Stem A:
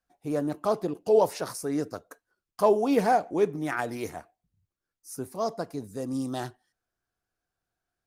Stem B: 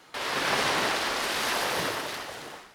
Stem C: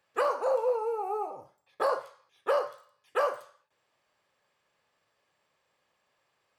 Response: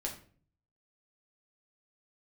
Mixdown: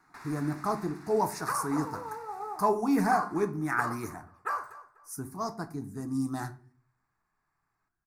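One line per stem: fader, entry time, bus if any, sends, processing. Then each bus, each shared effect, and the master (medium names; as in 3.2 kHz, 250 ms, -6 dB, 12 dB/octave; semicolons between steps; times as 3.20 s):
-1.5 dB, 0.00 s, send -4 dB, no echo send, none
-5.0 dB, 0.00 s, no send, no echo send, compression 12:1, threshold -33 dBFS, peak gain reduction 12 dB; auto duck -7 dB, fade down 1.20 s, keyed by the first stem
-2.0 dB, 1.30 s, send -13 dB, echo send -14.5 dB, none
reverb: on, RT60 0.45 s, pre-delay 6 ms
echo: feedback delay 246 ms, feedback 28%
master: static phaser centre 1.3 kHz, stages 4; tape noise reduction on one side only decoder only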